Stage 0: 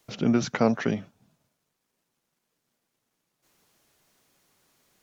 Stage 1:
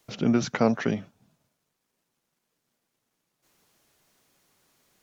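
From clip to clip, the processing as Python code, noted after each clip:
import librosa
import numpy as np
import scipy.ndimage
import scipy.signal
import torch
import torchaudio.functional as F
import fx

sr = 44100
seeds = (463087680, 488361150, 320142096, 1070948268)

y = x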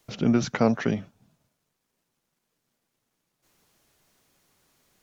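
y = fx.low_shelf(x, sr, hz=92.0, db=7.0)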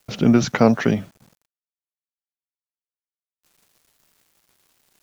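y = fx.quant_dither(x, sr, seeds[0], bits=10, dither='none')
y = y * 10.0 ** (6.5 / 20.0)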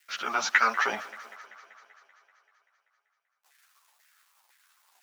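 y = fx.filter_lfo_highpass(x, sr, shape='saw_down', hz=2.0, low_hz=770.0, high_hz=1900.0, q=4.0)
y = fx.echo_thinned(y, sr, ms=193, feedback_pct=69, hz=230.0, wet_db=-18.0)
y = fx.ensemble(y, sr)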